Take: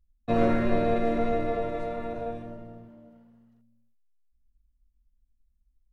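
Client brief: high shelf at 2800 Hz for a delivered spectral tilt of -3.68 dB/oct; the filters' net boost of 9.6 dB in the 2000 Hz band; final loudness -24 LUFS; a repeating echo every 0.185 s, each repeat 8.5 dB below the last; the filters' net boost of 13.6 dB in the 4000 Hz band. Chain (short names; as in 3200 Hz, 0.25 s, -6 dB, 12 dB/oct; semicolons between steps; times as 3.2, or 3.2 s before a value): bell 2000 Hz +6.5 dB; high shelf 2800 Hz +7 dB; bell 4000 Hz +8.5 dB; feedback echo 0.185 s, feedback 38%, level -8.5 dB; gain +1.5 dB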